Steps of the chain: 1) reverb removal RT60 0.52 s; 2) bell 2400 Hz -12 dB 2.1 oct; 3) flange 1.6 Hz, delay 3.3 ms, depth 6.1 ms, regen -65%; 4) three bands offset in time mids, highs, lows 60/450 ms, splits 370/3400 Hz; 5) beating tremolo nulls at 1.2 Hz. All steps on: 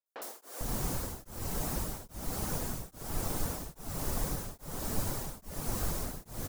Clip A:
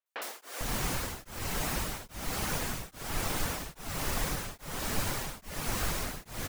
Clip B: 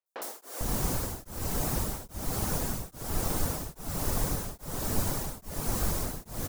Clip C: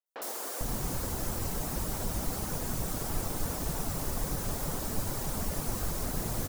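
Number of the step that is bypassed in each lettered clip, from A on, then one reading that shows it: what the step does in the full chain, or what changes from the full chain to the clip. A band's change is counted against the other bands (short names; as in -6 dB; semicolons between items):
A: 2, 2 kHz band +8.0 dB; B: 3, loudness change +4.5 LU; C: 5, momentary loudness spread change -6 LU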